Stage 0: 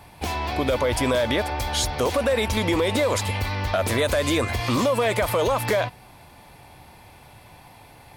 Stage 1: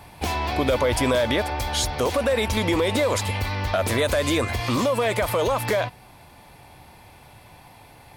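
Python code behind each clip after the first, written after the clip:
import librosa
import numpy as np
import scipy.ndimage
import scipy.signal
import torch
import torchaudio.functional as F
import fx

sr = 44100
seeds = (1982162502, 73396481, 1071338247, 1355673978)

y = fx.rider(x, sr, range_db=3, speed_s=2.0)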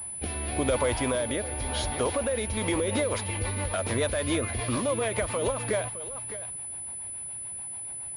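y = x + 10.0 ** (-13.5 / 20.0) * np.pad(x, (int(611 * sr / 1000.0), 0))[:len(x)]
y = fx.rotary_switch(y, sr, hz=0.9, then_hz=7.0, switch_at_s=2.38)
y = fx.pwm(y, sr, carrier_hz=10000.0)
y = y * 10.0 ** (-4.0 / 20.0)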